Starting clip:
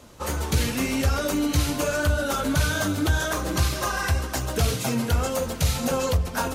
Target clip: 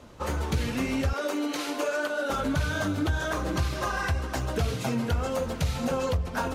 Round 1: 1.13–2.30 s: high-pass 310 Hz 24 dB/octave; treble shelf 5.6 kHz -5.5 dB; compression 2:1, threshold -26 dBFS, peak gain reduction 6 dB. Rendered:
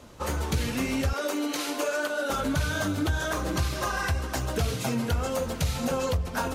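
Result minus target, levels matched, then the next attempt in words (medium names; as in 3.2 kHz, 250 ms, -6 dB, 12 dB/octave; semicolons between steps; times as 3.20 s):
8 kHz band +4.0 dB
1.13–2.30 s: high-pass 310 Hz 24 dB/octave; treble shelf 5.6 kHz -13 dB; compression 2:1, threshold -26 dBFS, peak gain reduction 6 dB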